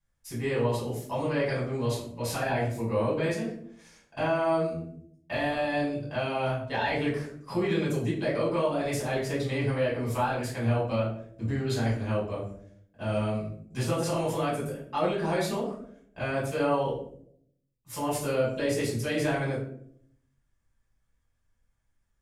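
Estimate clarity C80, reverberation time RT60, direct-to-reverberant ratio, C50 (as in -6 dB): 8.5 dB, 0.65 s, -8.5 dB, 4.5 dB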